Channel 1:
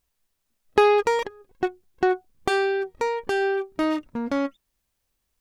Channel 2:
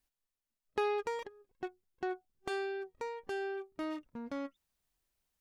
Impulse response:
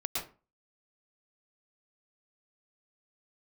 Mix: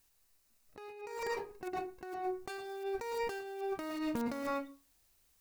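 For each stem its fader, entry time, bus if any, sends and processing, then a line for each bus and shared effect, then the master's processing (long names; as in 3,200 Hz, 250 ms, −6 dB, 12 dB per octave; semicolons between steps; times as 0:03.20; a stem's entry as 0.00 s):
−13.5 dB, 0.00 s, send −4 dB, parametric band 250 Hz −3 dB 0.84 octaves; notch filter 3,300 Hz, Q 5.6
−5.5 dB, 0.00 s, send −14.5 dB, wrap-around overflow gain 37 dB; every bin compressed towards the loudest bin 2 to 1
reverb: on, RT60 0.35 s, pre-delay 104 ms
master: high-shelf EQ 3,500 Hz +6 dB; compressor whose output falls as the input rises −40 dBFS, ratio −1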